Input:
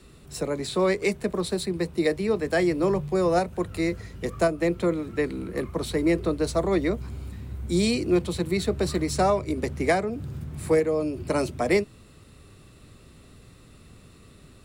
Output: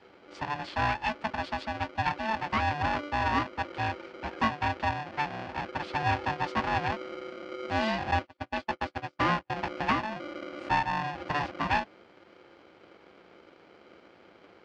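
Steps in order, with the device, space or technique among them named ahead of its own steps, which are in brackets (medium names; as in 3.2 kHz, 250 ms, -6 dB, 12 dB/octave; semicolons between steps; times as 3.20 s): 8.11–9.50 s: gate -23 dBFS, range -40 dB; ring modulator pedal into a guitar cabinet (polarity switched at an audio rate 440 Hz; cabinet simulation 98–4100 Hz, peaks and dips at 140 Hz -6 dB, 250 Hz -3 dB, 590 Hz -4 dB, 3.7 kHz -7 dB); trim -3.5 dB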